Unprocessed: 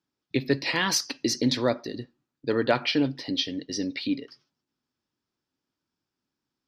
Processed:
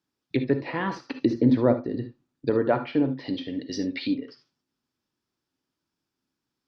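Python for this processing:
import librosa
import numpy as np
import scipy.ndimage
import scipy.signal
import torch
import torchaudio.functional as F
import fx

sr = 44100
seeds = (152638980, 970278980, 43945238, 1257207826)

y = fx.low_shelf(x, sr, hz=430.0, db=5.5, at=(1.1, 2.5))
y = fx.env_lowpass_down(y, sr, base_hz=1200.0, full_db=-23.5)
y = fx.rev_gated(y, sr, seeds[0], gate_ms=90, shape='rising', drr_db=9.5)
y = y * 10.0 ** (1.0 / 20.0)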